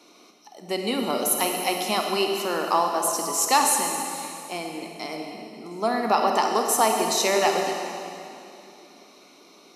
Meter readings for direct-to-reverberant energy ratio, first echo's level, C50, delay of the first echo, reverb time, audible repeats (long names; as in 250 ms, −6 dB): 2.0 dB, no echo audible, 2.5 dB, no echo audible, 2.8 s, no echo audible